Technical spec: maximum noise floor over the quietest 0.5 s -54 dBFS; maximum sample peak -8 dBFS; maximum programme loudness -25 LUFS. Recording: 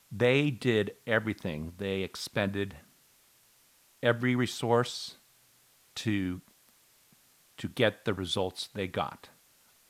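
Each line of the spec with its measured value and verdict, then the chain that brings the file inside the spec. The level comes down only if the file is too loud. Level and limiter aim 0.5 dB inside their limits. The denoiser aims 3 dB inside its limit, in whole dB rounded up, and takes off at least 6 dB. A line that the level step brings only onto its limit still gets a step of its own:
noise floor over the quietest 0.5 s -64 dBFS: OK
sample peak -10.0 dBFS: OK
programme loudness -31.0 LUFS: OK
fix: none

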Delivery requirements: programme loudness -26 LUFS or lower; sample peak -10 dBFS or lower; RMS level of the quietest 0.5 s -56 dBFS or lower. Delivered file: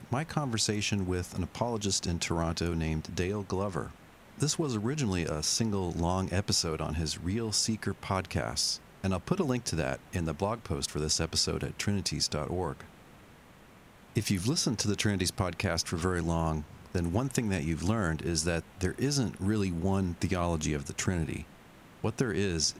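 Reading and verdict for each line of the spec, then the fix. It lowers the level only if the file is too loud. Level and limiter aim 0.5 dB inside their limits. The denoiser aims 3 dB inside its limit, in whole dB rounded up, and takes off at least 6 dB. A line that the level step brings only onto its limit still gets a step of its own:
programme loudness -31.0 LUFS: OK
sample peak -14.0 dBFS: OK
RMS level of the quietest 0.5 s -55 dBFS: fail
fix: denoiser 6 dB, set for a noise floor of -55 dBFS

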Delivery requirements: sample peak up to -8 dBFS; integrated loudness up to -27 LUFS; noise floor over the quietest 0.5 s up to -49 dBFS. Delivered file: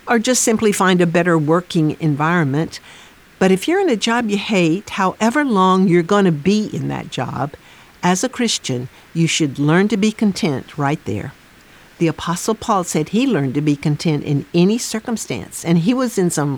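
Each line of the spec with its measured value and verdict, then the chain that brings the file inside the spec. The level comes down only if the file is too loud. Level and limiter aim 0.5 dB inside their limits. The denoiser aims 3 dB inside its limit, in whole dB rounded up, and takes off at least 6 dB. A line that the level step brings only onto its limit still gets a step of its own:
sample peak -3.5 dBFS: fail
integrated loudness -17.5 LUFS: fail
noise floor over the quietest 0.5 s -45 dBFS: fail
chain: gain -10 dB

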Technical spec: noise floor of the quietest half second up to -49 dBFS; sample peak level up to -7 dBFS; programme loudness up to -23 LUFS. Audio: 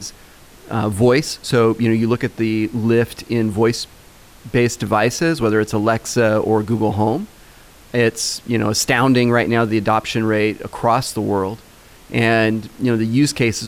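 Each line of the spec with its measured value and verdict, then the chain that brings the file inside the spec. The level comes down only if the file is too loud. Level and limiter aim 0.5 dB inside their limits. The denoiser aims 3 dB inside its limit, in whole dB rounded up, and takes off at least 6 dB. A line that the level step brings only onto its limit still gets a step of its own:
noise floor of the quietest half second -44 dBFS: fail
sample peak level -4.5 dBFS: fail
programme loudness -18.0 LUFS: fail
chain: gain -5.5 dB

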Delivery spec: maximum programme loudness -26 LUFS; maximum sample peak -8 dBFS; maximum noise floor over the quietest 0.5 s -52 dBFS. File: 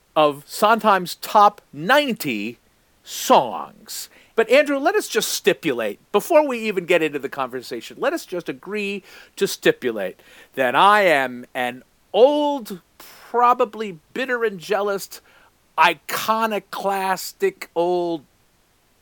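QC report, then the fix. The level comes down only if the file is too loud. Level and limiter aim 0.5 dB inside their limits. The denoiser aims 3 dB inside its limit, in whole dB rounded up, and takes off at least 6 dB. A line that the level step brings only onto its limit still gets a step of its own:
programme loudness -20.0 LUFS: fail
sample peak -2.5 dBFS: fail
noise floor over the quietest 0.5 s -60 dBFS: OK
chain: gain -6.5 dB

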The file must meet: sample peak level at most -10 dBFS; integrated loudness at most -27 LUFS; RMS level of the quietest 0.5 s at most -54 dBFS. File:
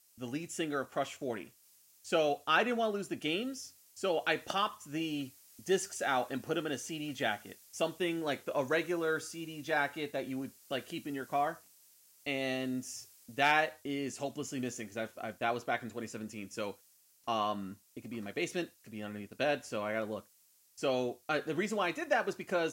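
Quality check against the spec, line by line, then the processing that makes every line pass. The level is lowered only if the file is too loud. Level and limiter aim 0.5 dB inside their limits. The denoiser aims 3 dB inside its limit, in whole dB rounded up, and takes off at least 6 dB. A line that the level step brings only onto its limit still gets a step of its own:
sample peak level -14.0 dBFS: OK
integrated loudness -35.0 LUFS: OK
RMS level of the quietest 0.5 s -67 dBFS: OK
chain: none

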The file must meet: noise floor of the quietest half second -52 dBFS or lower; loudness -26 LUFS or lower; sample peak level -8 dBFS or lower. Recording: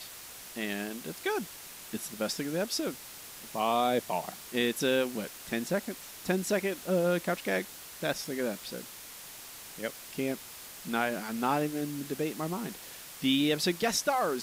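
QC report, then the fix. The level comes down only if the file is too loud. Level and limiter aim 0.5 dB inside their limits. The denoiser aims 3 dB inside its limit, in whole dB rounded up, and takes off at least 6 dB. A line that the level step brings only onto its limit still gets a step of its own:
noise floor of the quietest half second -47 dBFS: fail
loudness -32.0 LUFS: OK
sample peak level -14.0 dBFS: OK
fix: denoiser 8 dB, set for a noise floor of -47 dBFS

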